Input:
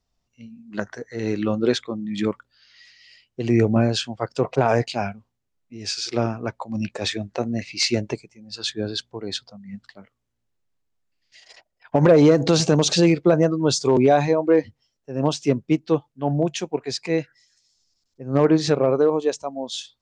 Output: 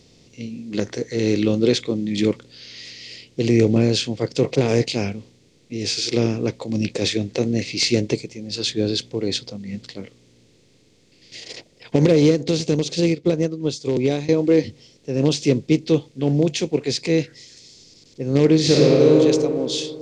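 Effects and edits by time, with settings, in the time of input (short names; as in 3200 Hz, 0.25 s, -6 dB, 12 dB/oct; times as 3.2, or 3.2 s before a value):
12.06–14.29 upward expander 2.5:1, over -26 dBFS
18.6–19.16 reverb throw, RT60 1.3 s, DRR -3.5 dB
whole clip: per-bin compression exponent 0.6; band shelf 1000 Hz -12.5 dB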